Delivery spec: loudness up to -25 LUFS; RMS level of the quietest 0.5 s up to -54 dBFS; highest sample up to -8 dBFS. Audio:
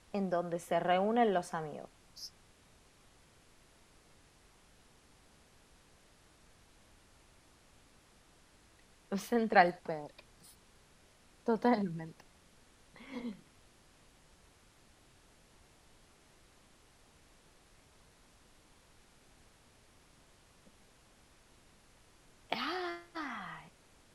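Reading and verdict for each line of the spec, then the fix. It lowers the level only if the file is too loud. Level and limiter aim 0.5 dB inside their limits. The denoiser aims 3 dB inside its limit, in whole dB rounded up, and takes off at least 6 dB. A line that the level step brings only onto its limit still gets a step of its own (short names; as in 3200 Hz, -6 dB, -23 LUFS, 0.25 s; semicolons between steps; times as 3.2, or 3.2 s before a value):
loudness -34.5 LUFS: OK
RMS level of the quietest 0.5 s -64 dBFS: OK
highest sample -9.5 dBFS: OK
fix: none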